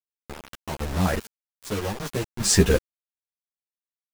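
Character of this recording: random-step tremolo 2.5 Hz, depth 85%; a quantiser's noise floor 6-bit, dither none; a shimmering, thickened sound

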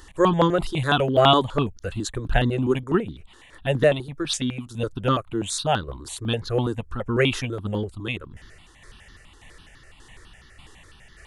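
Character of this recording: tremolo saw down 1.7 Hz, depth 45%; notches that jump at a steady rate 12 Hz 630–2500 Hz

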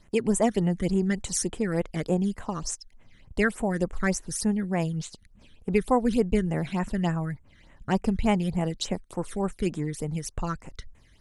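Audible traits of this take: phasing stages 12, 3.4 Hz, lowest notch 800–4800 Hz

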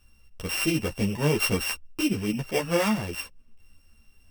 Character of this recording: a buzz of ramps at a fixed pitch in blocks of 16 samples; a shimmering, thickened sound

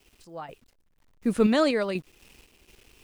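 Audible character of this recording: a quantiser's noise floor 10-bit, dither none; random-step tremolo 4.1 Hz, depth 90%

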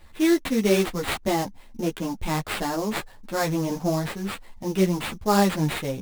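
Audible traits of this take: aliases and images of a low sample rate 6 kHz, jitter 20%; a shimmering, thickened sound

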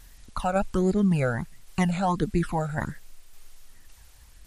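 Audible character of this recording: phasing stages 12, 1.4 Hz, lowest notch 310–1100 Hz; a quantiser's noise floor 10-bit, dither triangular; tremolo saw down 1.8 Hz, depth 35%; MP3

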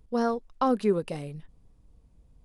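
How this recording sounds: noise floor -61 dBFS; spectral tilt -5.0 dB/octave

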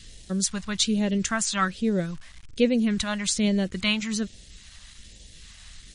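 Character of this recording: a quantiser's noise floor 8-bit, dither none; phasing stages 2, 1.2 Hz, lowest notch 380–1200 Hz; MP3

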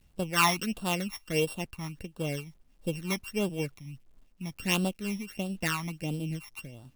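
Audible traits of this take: a buzz of ramps at a fixed pitch in blocks of 16 samples; phasing stages 12, 1.5 Hz, lowest notch 470–2100 Hz; a quantiser's noise floor 12-bit, dither none; random flutter of the level

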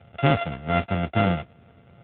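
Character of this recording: a buzz of ramps at a fixed pitch in blocks of 64 samples; AMR-NB

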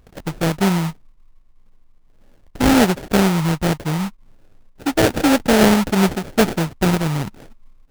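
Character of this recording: aliases and images of a low sample rate 1.1 kHz, jitter 20%

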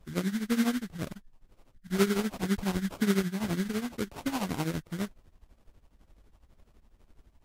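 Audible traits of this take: phasing stages 4, 2 Hz, lowest notch 470–2100 Hz; aliases and images of a low sample rate 1.8 kHz, jitter 20%; tremolo triangle 12 Hz, depth 85%; Vorbis

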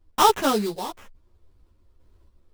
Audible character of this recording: aliases and images of a low sample rate 4.5 kHz, jitter 20%; random-step tremolo; a shimmering, thickened sound

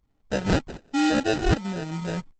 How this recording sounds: tremolo saw up 1.3 Hz, depth 75%; aliases and images of a low sample rate 1.1 kHz, jitter 0%; Opus

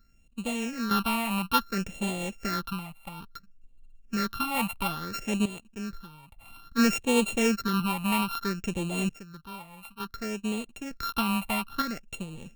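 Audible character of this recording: a buzz of ramps at a fixed pitch in blocks of 32 samples; random-step tremolo 1.1 Hz, depth 80%; phasing stages 6, 0.59 Hz, lowest notch 400–1500 Hz

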